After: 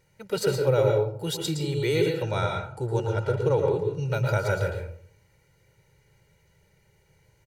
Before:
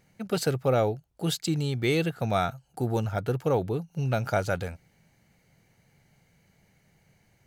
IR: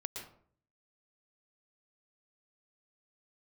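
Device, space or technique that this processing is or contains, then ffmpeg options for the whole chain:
microphone above a desk: -filter_complex "[0:a]aecho=1:1:2.1:0.79[a];[1:a]atrim=start_sample=2205[b];[a][b]afir=irnorm=-1:irlink=0,asettb=1/sr,asplit=3[c][d][e];[c]atrim=end=2.224[f];[d]atrim=start=2.22:end=4.1,asetpts=PTS-STARTPTS,afade=t=in:d=0.004:c=qsin,afade=t=out:st=1.876:d=0.004:c=qsin,lowpass=f=9.5k:w=0.5412,lowpass=f=9.5k:w=1.3066[g];[e]atrim=start=4.096[h];[f][g]acrossfade=d=0.004:c1=hsin:c2=qsin[i];[i][h]acrossfade=d=0.004:c1=qsin:c2=hsin"

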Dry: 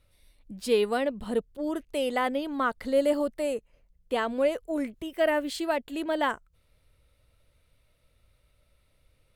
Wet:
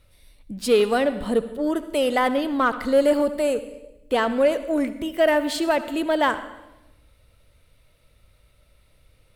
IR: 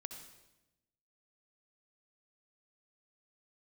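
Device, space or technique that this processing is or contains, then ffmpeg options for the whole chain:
saturated reverb return: -filter_complex "[0:a]asplit=2[a][b];[1:a]atrim=start_sample=2205[c];[b][c]afir=irnorm=-1:irlink=0,asoftclip=type=tanh:threshold=-28dB,volume=1.5dB[d];[a][d]amix=inputs=2:normalize=0,volume=3dB"

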